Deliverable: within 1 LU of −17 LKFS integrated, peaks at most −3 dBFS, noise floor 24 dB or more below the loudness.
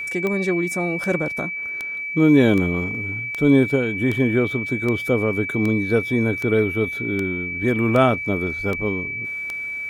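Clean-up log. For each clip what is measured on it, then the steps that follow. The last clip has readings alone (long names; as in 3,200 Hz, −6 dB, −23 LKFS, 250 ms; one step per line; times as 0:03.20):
number of clicks 13; interfering tone 2,300 Hz; level of the tone −26 dBFS; integrated loudness −20.5 LKFS; sample peak −4.5 dBFS; target loudness −17.0 LKFS
→ click removal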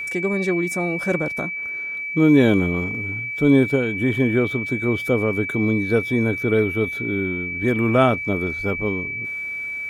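number of clicks 0; interfering tone 2,300 Hz; level of the tone −26 dBFS
→ notch filter 2,300 Hz, Q 30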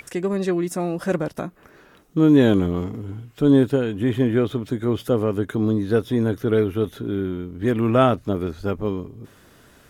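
interfering tone none found; integrated loudness −21.5 LKFS; sample peak −5.5 dBFS; target loudness −17.0 LKFS
→ level +4.5 dB
brickwall limiter −3 dBFS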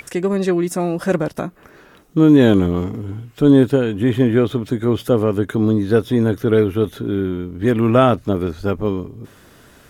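integrated loudness −17.5 LKFS; sample peak −3.0 dBFS; background noise floor −48 dBFS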